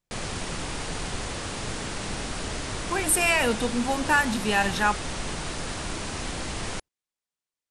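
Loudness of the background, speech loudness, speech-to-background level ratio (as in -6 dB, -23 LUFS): -32.5 LUFS, -24.0 LUFS, 8.5 dB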